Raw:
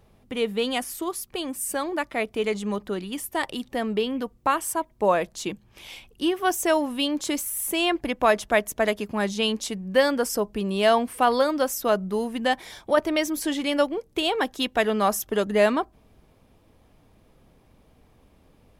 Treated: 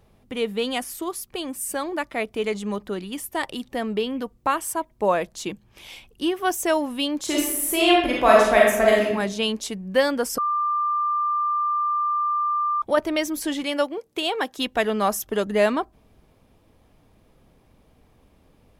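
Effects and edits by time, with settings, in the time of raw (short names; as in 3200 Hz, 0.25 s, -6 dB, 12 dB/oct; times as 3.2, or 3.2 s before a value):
7.24–9.11 reverb throw, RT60 0.88 s, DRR -4 dB
10.38–12.82 bleep 1190 Hz -20 dBFS
13.63–14.58 HPF 290 Hz 6 dB/oct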